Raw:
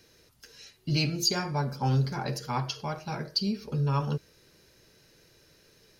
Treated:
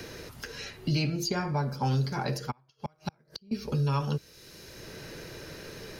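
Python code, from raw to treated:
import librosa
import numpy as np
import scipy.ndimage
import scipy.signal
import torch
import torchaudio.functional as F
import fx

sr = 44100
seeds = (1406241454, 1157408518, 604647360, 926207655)

y = fx.gate_flip(x, sr, shuts_db=-25.0, range_db=-39, at=(2.5, 3.51), fade=0.02)
y = fx.band_squash(y, sr, depth_pct=70)
y = y * librosa.db_to_amplitude(1.0)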